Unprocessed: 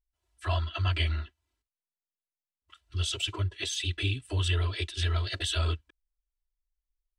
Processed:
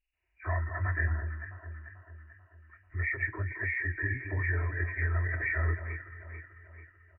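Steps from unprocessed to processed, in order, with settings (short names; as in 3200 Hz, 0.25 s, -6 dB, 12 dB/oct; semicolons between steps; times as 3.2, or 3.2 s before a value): nonlinear frequency compression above 1500 Hz 4:1; doubler 25 ms -13.5 dB; echo with dull and thin repeats by turns 0.22 s, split 1300 Hz, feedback 69%, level -8 dB; gain -3.5 dB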